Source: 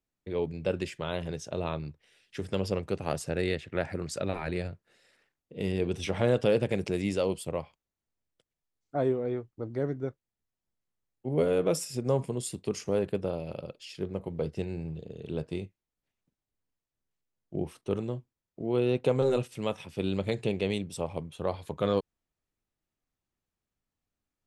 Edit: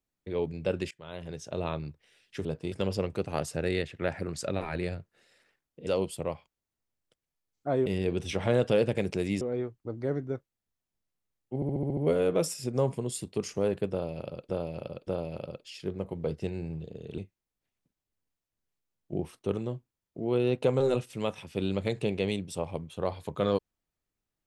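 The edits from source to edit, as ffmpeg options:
-filter_complex "[0:a]asplit=16[a][b][c][d][e][f][g][h][i][j][k][l][m][n][o][p];[a]atrim=end=0.91,asetpts=PTS-STARTPTS,afade=t=out:st=0.906:d=0.004:c=hsin:silence=0.0841395[q];[b]atrim=start=0.91:end=2.452,asetpts=PTS-STARTPTS,afade=t=in:d=0.69:silence=0.0841395[r];[c]atrim=start=15.328:end=15.602[s];[d]atrim=start=2.448:end=5.602[t];[e]atrim=start=7.148:end=9.142[u];[f]atrim=start=5.598:end=7.152[v];[g]atrim=start=9.138:end=11.352[w];[h]atrim=start=11.278:end=11.352[x];[i]atrim=start=11.278:end=11.352[y];[j]atrim=start=11.278:end=11.352[z];[k]atrim=start=11.278:end=11.352[aa];[l]atrim=start=11.278:end=11.352[ab];[m]atrim=start=11.278:end=13.802[ac];[n]atrim=start=13.218:end=13.802[ad];[o]atrim=start=13.218:end=15.332[ae];[p]atrim=start=15.598[af];[q][r]concat=n=2:v=0:a=1[ag];[ag][s]acrossfade=d=0.004:c1=hsin:c2=hsin[ah];[ah][t]acrossfade=d=0.004:c1=hsin:c2=hsin[ai];[ai][u]acrossfade=d=0.004:c1=hsin:c2=hsin[aj];[aj][v]acrossfade=d=0.004:c1=hsin:c2=hsin[ak];[ak][w]acrossfade=d=0.004:c1=hsin:c2=hsin[al];[al][x]acrossfade=d=0.004:c1=hsin:c2=hsin[am];[am][y]acrossfade=d=0.004:c1=hsin:c2=hsin[an];[an][z]acrossfade=d=0.004:c1=hsin:c2=hsin[ao];[ao][aa]acrossfade=d=0.004:c1=hsin:c2=hsin[ap];[ap][ab]acrossfade=d=0.004:c1=hsin:c2=hsin[aq];[aq][ac]acrossfade=d=0.004:c1=hsin:c2=hsin[ar];[ar][ad]acrossfade=d=0.004:c1=hsin:c2=hsin[as];[as][ae]acrossfade=d=0.004:c1=hsin:c2=hsin[at];[at][af]acrossfade=d=0.004:c1=hsin:c2=hsin"

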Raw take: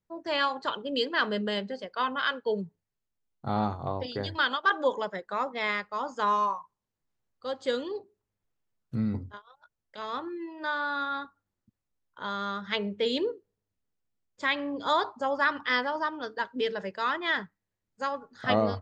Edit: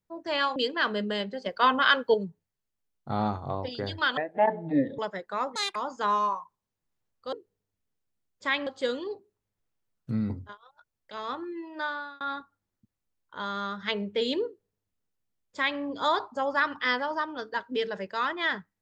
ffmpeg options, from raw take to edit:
-filter_complex "[0:a]asplit=11[a][b][c][d][e][f][g][h][i][j][k];[a]atrim=end=0.562[l];[b]atrim=start=0.928:end=1.832[m];[c]atrim=start=1.828:end=2.512,asetpts=PTS-STARTPTS,volume=7dB[n];[d]atrim=start=2.508:end=4.544[o];[e]atrim=start=4.54:end=4.98,asetpts=PTS-STARTPTS,asetrate=23814,aresample=44100,atrim=end_sample=35933,asetpts=PTS-STARTPTS[p];[f]atrim=start=4.976:end=5.554[q];[g]atrim=start=5.55:end=5.94,asetpts=PTS-STARTPTS,asetrate=85554,aresample=44100,atrim=end_sample=8865,asetpts=PTS-STARTPTS[r];[h]atrim=start=5.936:end=7.512[s];[i]atrim=start=13.298:end=14.642[t];[j]atrim=start=7.508:end=11.05,asetpts=PTS-STARTPTS,afade=t=out:st=3.152:d=0.39[u];[k]atrim=start=11.05,asetpts=PTS-STARTPTS,afade=t=in:d=0.004:c=hsin[v];[l][m]acrossfade=d=0.004:c1=hsin:c2=hsin[w];[w][n]acrossfade=d=0.004:c1=hsin:c2=hsin[x];[x][o]acrossfade=d=0.004:c1=hsin:c2=hsin[y];[y][p]acrossfade=d=0.004:c1=hsin:c2=hsin[z];[z][q]acrossfade=d=0.004:c1=hsin:c2=hsin[aa];[aa][r]acrossfade=d=0.004:c1=hsin:c2=hsin[ab];[ab][s]acrossfade=d=0.004:c1=hsin:c2=hsin[ac];[ac][t]acrossfade=d=0.004:c1=hsin:c2=hsin[ad];[u][v]concat=n=2:v=0:a=1[ae];[ad][ae]acrossfade=d=0.004:c1=hsin:c2=hsin"

